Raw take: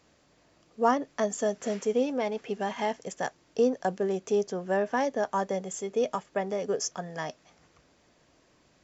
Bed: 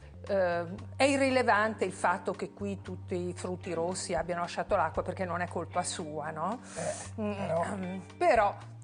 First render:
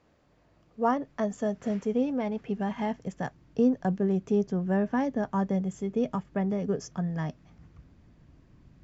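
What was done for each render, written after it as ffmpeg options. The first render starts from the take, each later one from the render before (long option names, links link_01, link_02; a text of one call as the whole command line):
ffmpeg -i in.wav -af "lowpass=frequency=1500:poles=1,asubboost=boost=8.5:cutoff=180" out.wav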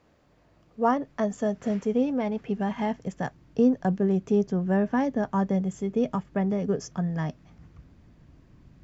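ffmpeg -i in.wav -af "volume=2.5dB" out.wav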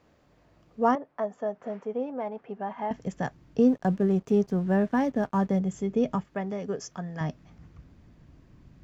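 ffmpeg -i in.wav -filter_complex "[0:a]asettb=1/sr,asplit=3[link_01][link_02][link_03];[link_01]atrim=end=0.954[link_04];[link_02]atrim=start=0.95:end=2.91,asetpts=PTS-STARTPTS,afade=type=in:duration=0.004:curve=qsin,afade=type=out:start_time=1.956:duration=0.004:curve=qsin,bandpass=frequency=820:width_type=q:width=1.1[link_05];[link_03]atrim=start=2.906[link_06];[link_04][link_05]acrossfade=duration=0.004:curve1=hsin:curve2=qsin[link_07];[link_07][link_06]acrossfade=duration=0.004:curve1=qsin:curve2=hsin,asettb=1/sr,asplit=3[link_08][link_09][link_10];[link_08]atrim=end=3.614[link_11];[link_09]atrim=start=3.61:end=5.59,asetpts=PTS-STARTPTS,afade=type=in:duration=0.004:curve=qsin,afade=type=out:start_time=1.976:duration=0.004:curve=qsin,aeval=exprs='sgn(val(0))*max(abs(val(0))-0.00251,0)':channel_layout=same[link_12];[link_10]atrim=start=5.586[link_13];[link_11][link_12]acrossfade=duration=0.004:curve1=hsin:curve2=qsin[link_14];[link_14][link_13]acrossfade=duration=0.004:curve1=qsin:curve2=hsin,asettb=1/sr,asplit=3[link_15][link_16][link_17];[link_15]atrim=end=6.244[link_18];[link_16]atrim=start=6.24:end=7.21,asetpts=PTS-STARTPTS,afade=type=in:duration=0.004:curve=qsin,afade=type=out:start_time=0.966:duration=0.004:curve=qsin,lowshelf=frequency=330:gain=-11[link_19];[link_17]atrim=start=7.206[link_20];[link_18][link_19]acrossfade=duration=0.004:curve1=hsin:curve2=qsin[link_21];[link_21][link_20]acrossfade=duration=0.004:curve1=qsin:curve2=hsin" out.wav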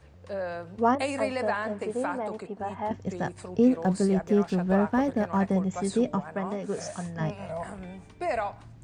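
ffmpeg -i in.wav -i bed.wav -filter_complex "[1:a]volume=-4.5dB[link_01];[0:a][link_01]amix=inputs=2:normalize=0" out.wav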